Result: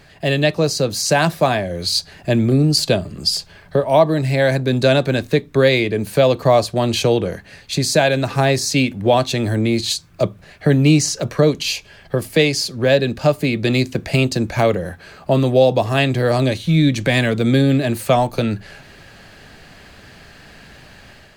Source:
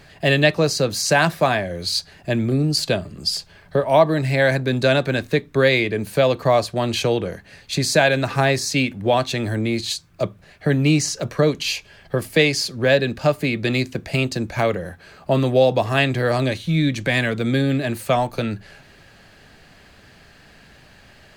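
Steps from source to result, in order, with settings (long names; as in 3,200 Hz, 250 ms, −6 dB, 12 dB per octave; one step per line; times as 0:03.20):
dynamic equaliser 1,700 Hz, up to −5 dB, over −34 dBFS, Q 0.91
automatic gain control gain up to 6 dB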